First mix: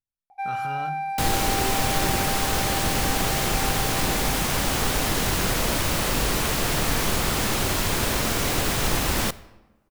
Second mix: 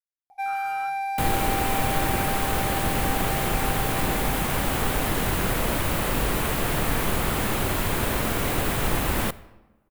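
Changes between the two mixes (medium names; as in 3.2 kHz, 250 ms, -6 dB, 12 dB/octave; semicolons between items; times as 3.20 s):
speech: add band-pass filter 1.6 kHz, Q 2.1; first sound: add treble shelf 4.2 kHz +12 dB; second sound: add peaking EQ 5.5 kHz -10.5 dB 1.2 oct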